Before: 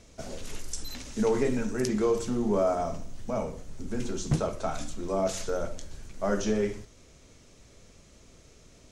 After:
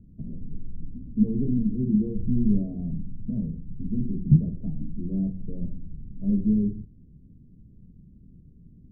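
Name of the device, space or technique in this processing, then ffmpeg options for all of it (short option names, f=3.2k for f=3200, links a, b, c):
the neighbour's flat through the wall: -filter_complex "[0:a]asplit=3[a][b][c];[a]afade=t=out:st=2.15:d=0.02[d];[b]asubboost=boost=3:cutoff=130,afade=t=in:st=2.15:d=0.02,afade=t=out:st=2.58:d=0.02[e];[c]afade=t=in:st=2.58:d=0.02[f];[d][e][f]amix=inputs=3:normalize=0,lowpass=f=260:w=0.5412,lowpass=f=260:w=1.3066,equalizer=f=170:t=o:w=0.95:g=8,volume=4dB"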